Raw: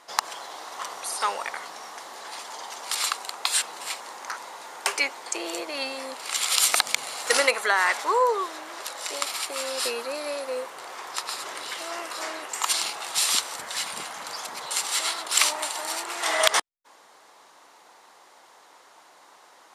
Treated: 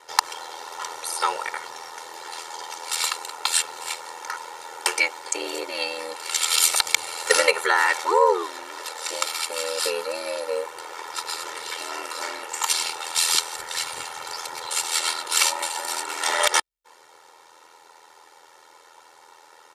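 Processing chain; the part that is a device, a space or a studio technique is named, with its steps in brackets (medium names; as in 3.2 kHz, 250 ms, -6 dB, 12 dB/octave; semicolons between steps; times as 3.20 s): ring-modulated robot voice (ring modulator 41 Hz; comb 2.2 ms, depth 77%); trim +3 dB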